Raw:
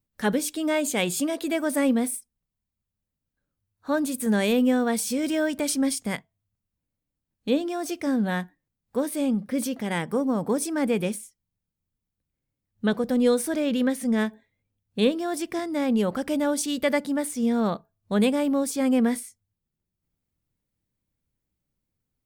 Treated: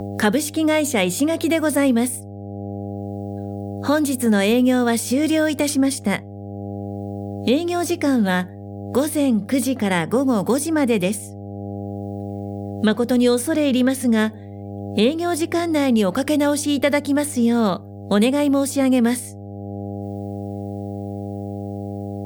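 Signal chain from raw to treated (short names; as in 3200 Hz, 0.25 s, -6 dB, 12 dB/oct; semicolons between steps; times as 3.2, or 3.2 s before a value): buzz 100 Hz, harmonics 8, -46 dBFS -6 dB/oct; three-band squash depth 70%; gain +6 dB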